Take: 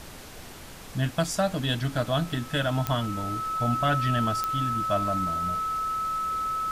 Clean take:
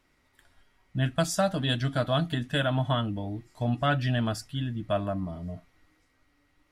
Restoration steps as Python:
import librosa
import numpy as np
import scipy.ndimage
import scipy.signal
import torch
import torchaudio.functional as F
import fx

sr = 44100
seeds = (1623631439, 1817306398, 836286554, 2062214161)

y = fx.fix_declick_ar(x, sr, threshold=10.0)
y = fx.notch(y, sr, hz=1300.0, q=30.0)
y = fx.noise_reduce(y, sr, print_start_s=0.44, print_end_s=0.94, reduce_db=25.0)